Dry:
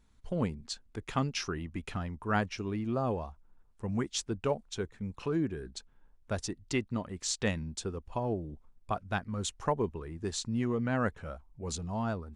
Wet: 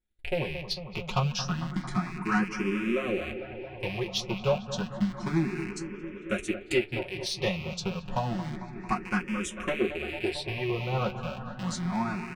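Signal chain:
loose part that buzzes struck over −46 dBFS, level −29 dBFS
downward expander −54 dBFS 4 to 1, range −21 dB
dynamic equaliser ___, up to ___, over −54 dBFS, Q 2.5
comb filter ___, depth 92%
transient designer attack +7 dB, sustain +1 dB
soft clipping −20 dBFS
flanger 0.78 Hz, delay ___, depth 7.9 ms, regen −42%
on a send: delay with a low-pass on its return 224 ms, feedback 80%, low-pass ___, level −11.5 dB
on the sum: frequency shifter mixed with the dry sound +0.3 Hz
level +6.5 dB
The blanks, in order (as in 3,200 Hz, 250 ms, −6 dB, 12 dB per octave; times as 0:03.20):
7,200 Hz, −6 dB, 5.5 ms, 8.4 ms, 2,200 Hz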